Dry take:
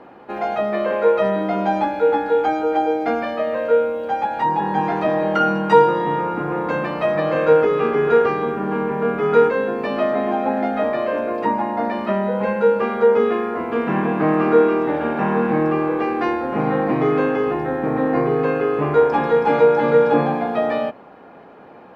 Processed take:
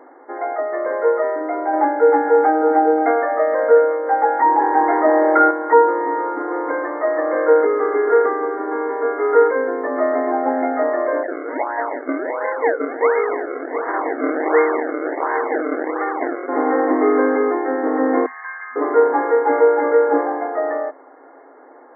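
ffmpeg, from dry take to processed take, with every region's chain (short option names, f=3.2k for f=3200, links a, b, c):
-filter_complex "[0:a]asettb=1/sr,asplit=3[a][b][c];[a]atrim=end=1.734[d];[b]atrim=start=1.73:end=5.51,asetpts=PTS-STARTPTS,afade=t=in:d=0.004:c=qsin,afade=t=out:st=3.776:d=0.004:c=qsin,acontrast=27,aecho=1:1:530:0.224,atrim=end_sample=166698[e];[c]atrim=start=5.506[f];[d][e]acrossfade=d=0.004:c1=hsin:c2=qsin[g];[g][f]acrossfade=d=0.004:c1=qsin:c2=hsin,asettb=1/sr,asplit=3[h][i][j];[h]atrim=end=11.234[k];[i]atrim=start=11.23:end=16.49,asetpts=PTS-STARTPTS,afade=t=in:d=0.004:c=qsin,afade=t=out:st=5.256:d=0.004:c=qsin,bandpass=f=1k:t=q:w=0.91,acrusher=samples=33:mix=1:aa=0.000001:lfo=1:lforange=33:lforate=1.4[l];[j]atrim=start=16.486[m];[k][l]acrossfade=d=0.004:c1=hsin:c2=qsin[n];[n][m]acrossfade=d=0.004:c1=qsin:c2=hsin,asettb=1/sr,asplit=3[o][p][q];[o]atrim=end=18.264[r];[p]atrim=start=18.26:end=18.76,asetpts=PTS-STARTPTS,afade=t=in:d=0.004:c=qsin,afade=t=out:st=0.496:d=0.004:c=qsin,highpass=f=1.4k:w=0.5412,highpass=f=1.4k:w=1.3066,aecho=1:1:1.1:0.66,atrim=end_sample=22050[s];[q]atrim=start=18.756[t];[r][s]acrossfade=d=0.004:c1=hsin:c2=qsin[u];[u][t]acrossfade=d=0.004:c1=qsin:c2=hsin,afftfilt=real='re*between(b*sr/4096,250,2200)':imag='im*between(b*sr/4096,250,2200)':win_size=4096:overlap=0.75,dynaudnorm=f=440:g=17:m=11.5dB,volume=-1dB"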